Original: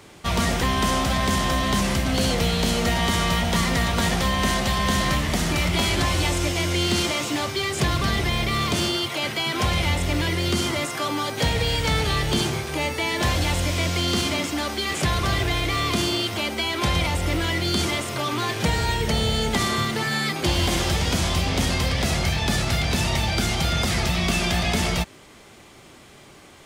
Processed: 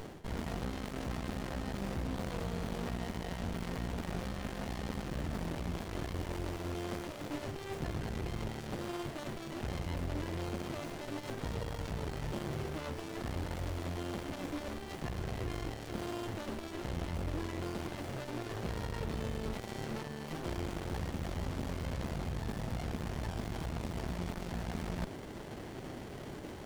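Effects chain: soft clip -22.5 dBFS, distortion -11 dB; reverse; compressor 16:1, threshold -38 dBFS, peak gain reduction 14 dB; reverse; running maximum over 33 samples; gain +5.5 dB

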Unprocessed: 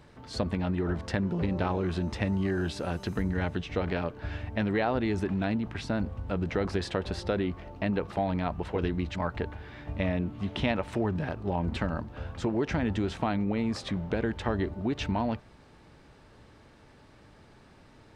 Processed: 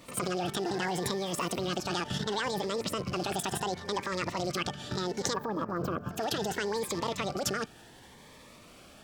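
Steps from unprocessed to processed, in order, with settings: rattling part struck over -32 dBFS, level -37 dBFS; spectral gain 10.72–12.4, 880–6600 Hz -18 dB; in parallel at -3 dB: compressor 6:1, threshold -33 dBFS, peak gain reduction 10 dB; on the sum: pre-echo 0.163 s -18 dB; wide varispeed 2.01×; level quantiser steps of 11 dB; low shelf 480 Hz -6.5 dB; cascading phaser rising 0.7 Hz; gain +6 dB

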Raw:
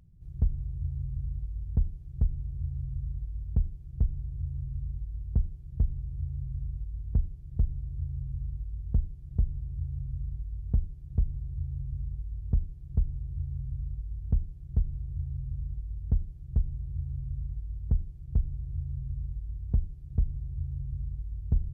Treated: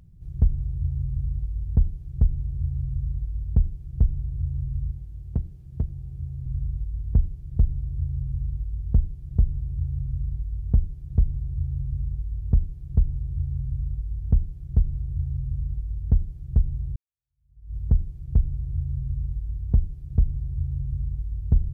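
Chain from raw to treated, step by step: 4.91–6.46 HPF 130 Hz 6 dB/oct; 16.96–17.75 fade in exponential; gain +6.5 dB

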